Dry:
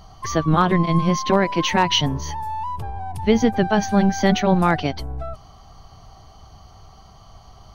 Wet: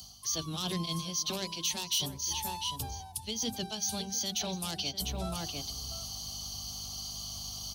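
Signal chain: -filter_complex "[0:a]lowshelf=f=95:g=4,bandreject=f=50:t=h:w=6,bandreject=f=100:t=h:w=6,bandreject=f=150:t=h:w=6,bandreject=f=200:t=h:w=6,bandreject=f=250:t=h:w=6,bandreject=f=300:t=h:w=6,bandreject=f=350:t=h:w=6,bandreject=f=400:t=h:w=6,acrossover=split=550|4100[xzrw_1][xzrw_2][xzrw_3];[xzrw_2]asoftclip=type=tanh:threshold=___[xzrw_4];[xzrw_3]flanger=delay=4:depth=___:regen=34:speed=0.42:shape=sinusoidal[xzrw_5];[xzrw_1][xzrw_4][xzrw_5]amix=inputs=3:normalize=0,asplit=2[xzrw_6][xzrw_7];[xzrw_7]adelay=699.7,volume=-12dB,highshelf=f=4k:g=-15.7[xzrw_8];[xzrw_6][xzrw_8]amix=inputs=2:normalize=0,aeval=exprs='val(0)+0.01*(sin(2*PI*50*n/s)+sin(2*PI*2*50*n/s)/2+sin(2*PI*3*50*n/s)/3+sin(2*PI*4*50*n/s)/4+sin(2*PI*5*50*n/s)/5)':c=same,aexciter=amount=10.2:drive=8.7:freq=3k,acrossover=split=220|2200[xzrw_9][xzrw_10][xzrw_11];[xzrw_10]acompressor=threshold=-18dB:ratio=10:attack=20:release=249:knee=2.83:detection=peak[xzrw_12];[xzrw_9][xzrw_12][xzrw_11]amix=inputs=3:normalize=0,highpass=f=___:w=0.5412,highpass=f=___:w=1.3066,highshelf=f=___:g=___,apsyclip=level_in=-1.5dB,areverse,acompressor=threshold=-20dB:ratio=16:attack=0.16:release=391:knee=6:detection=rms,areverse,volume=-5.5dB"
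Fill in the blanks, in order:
-16dB, 1.7, 52, 52, 8.3k, 10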